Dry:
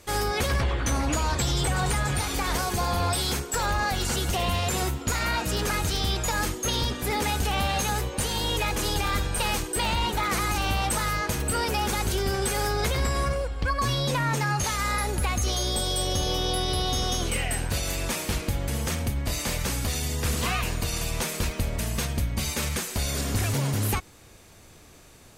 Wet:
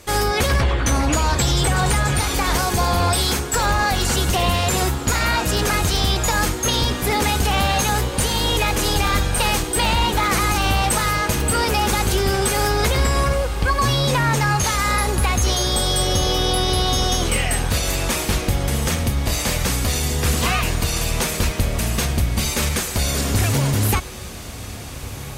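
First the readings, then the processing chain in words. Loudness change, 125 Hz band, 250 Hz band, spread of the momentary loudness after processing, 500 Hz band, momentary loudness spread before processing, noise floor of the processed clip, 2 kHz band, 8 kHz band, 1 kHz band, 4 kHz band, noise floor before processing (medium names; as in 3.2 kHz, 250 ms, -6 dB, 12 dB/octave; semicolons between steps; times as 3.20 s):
+7.0 dB, +7.5 dB, +7.5 dB, 3 LU, +7.0 dB, 3 LU, -31 dBFS, +7.0 dB, +7.0 dB, +7.5 dB, +7.0 dB, -50 dBFS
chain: echo that smears into a reverb 1407 ms, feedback 75%, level -16 dB; trim +7 dB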